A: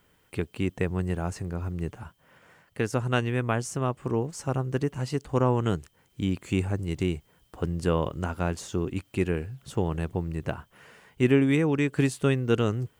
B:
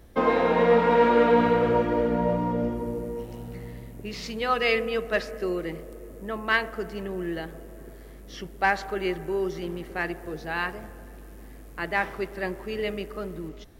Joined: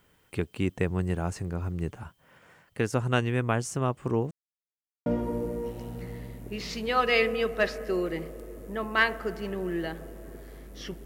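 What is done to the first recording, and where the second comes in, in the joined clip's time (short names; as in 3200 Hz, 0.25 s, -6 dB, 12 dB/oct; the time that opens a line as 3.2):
A
4.31–5.06 mute
5.06 switch to B from 2.59 s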